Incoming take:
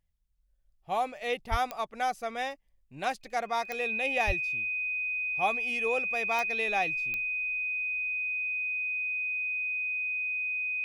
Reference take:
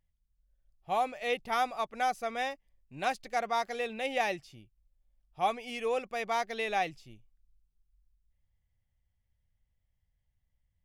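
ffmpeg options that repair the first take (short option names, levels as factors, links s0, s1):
-filter_complex "[0:a]adeclick=t=4,bandreject=f=2500:w=30,asplit=3[s0][s1][s2];[s0]afade=t=out:st=1.5:d=0.02[s3];[s1]highpass=f=140:w=0.5412,highpass=f=140:w=1.3066,afade=t=in:st=1.5:d=0.02,afade=t=out:st=1.62:d=0.02[s4];[s2]afade=t=in:st=1.62:d=0.02[s5];[s3][s4][s5]amix=inputs=3:normalize=0,asplit=3[s6][s7][s8];[s6]afade=t=out:st=4.26:d=0.02[s9];[s7]highpass=f=140:w=0.5412,highpass=f=140:w=1.3066,afade=t=in:st=4.26:d=0.02,afade=t=out:st=4.38:d=0.02[s10];[s8]afade=t=in:st=4.38:d=0.02[s11];[s9][s10][s11]amix=inputs=3:normalize=0"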